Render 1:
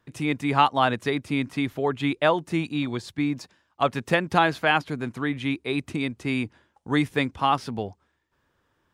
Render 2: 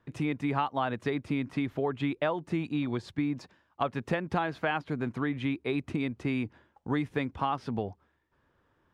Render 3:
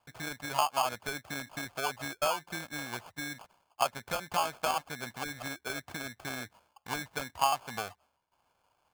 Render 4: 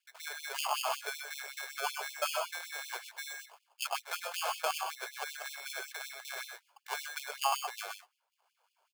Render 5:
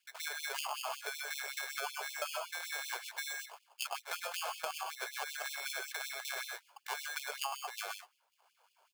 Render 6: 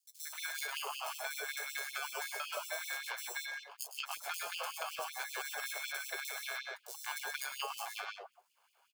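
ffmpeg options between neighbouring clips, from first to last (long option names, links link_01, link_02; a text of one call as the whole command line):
ffmpeg -i in.wav -af "lowpass=frequency=1900:poles=1,acompressor=threshold=-28dB:ratio=4,volume=1dB" out.wav
ffmpeg -i in.wav -af "acrusher=samples=23:mix=1:aa=0.000001,lowshelf=frequency=510:width_type=q:width=1.5:gain=-12" out.wav
ffmpeg -i in.wav -filter_complex "[0:a]asplit=2[link_01][link_02];[link_02]aecho=0:1:103|124:0.398|0.501[link_03];[link_01][link_03]amix=inputs=2:normalize=0,afftfilt=real='re*gte(b*sr/1024,370*pow(2500/370,0.5+0.5*sin(2*PI*5.3*pts/sr)))':imag='im*gte(b*sr/1024,370*pow(2500/370,0.5+0.5*sin(2*PI*5.3*pts/sr)))':win_size=1024:overlap=0.75,volume=-1.5dB" out.wav
ffmpeg -i in.wav -af "acompressor=threshold=-41dB:ratio=6,volume=5dB" out.wav
ffmpeg -i in.wav -filter_complex "[0:a]acrossover=split=790|4900[link_01][link_02][link_03];[link_02]adelay=180[link_04];[link_01]adelay=350[link_05];[link_05][link_04][link_03]amix=inputs=3:normalize=0,volume=1dB" out.wav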